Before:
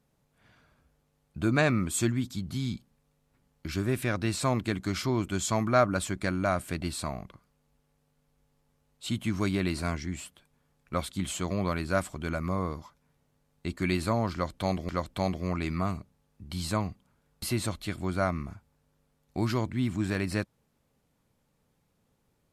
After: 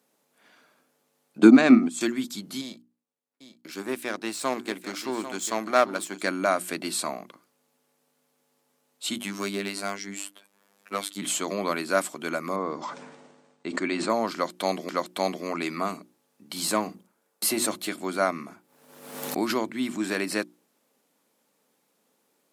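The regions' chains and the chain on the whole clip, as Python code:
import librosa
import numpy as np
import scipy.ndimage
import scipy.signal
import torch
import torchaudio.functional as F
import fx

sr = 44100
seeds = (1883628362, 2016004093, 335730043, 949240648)

y = fx.chain(x, sr, fx.lowpass(hz=7500.0, slope=12),
    fx.peak_eq(hz=250.0, db=14.0, octaves=0.59),
    fx.transient(attack_db=8, sustain_db=-12), at=(1.38, 2.01))
y = fx.chain(y, sr, fx.power_curve(exponent=1.4),
    fx.echo_single(ms=794, db=-11.5), at=(2.61, 6.21))
y = fx.chain(y, sr, fx.clip_hard(threshold_db=-21.0),
    fx.robotise(hz=99.6),
    fx.band_squash(depth_pct=40), at=(9.16, 11.22))
y = fx.chain(y, sr, fx.steep_lowpass(hz=8900.0, slope=72),
    fx.high_shelf(hz=3100.0, db=-11.5),
    fx.sustainer(db_per_s=37.0), at=(12.56, 14.1))
y = fx.chain(y, sr, fx.peak_eq(hz=3400.0, db=-4.0, octaves=2.0),
    fx.hum_notches(base_hz=50, count=5),
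    fx.leveller(passes=1), at=(16.56, 17.89))
y = fx.chain(y, sr, fx.peak_eq(hz=6100.0, db=-3.5, octaves=1.8),
    fx.pre_swell(db_per_s=54.0), at=(18.49, 19.73))
y = scipy.signal.sosfilt(scipy.signal.butter(4, 240.0, 'highpass', fs=sr, output='sos'), y)
y = fx.high_shelf(y, sr, hz=5200.0, db=6.0)
y = fx.hum_notches(y, sr, base_hz=60, count=6)
y = y * 10.0 ** (4.5 / 20.0)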